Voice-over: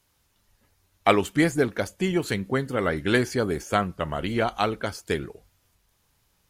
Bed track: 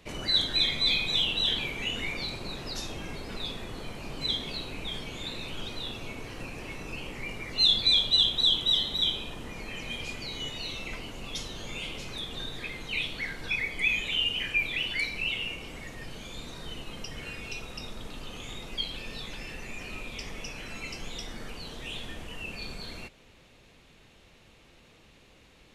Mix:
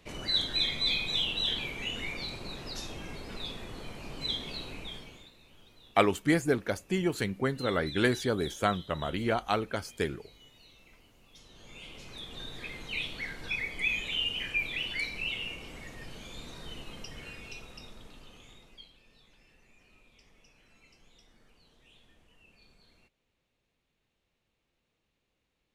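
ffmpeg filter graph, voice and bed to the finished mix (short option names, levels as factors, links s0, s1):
-filter_complex "[0:a]adelay=4900,volume=0.596[s0];[1:a]volume=5.31,afade=t=out:st=4.71:d=0.6:silence=0.125893,afade=t=in:st=11.33:d=1.4:silence=0.125893,afade=t=out:st=16.82:d=2.13:silence=0.105925[s1];[s0][s1]amix=inputs=2:normalize=0"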